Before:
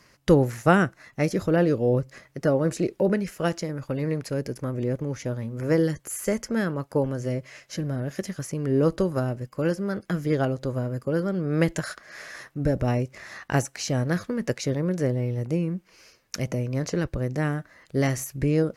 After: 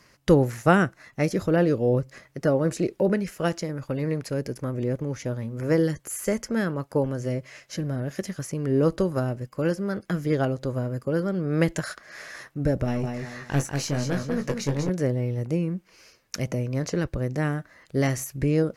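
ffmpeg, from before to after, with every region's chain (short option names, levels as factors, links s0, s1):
-filter_complex "[0:a]asettb=1/sr,asplit=3[s0][s1][s2];[s0]atrim=end=12.844[s3];[s1]atrim=start=12.84:end=14.9,asetpts=PTS-STARTPTS,afade=t=in:d=0.004:c=qsin,afade=t=out:st=2.056:d=0.004:c=qsin,aecho=1:1:192|384|576|768:0.501|0.165|0.0546|0.018,atrim=end_sample=90846,aeval=exprs='(tanh(7.08*val(0)+0.45)-tanh(0.45))/7.08':c=same,asplit=2[s4][s5];[s5]adelay=21,volume=0.447[s6];[s4][s6]amix=inputs=2:normalize=0,atrim=end_sample=90846[s7];[s2]atrim=start=14.896[s8];[s3][s7]acrossfade=d=0.004:c1=hsin:c2=qsin[s9];[s9][s8]acrossfade=d=0.004:c1=qsin:c2=hsin"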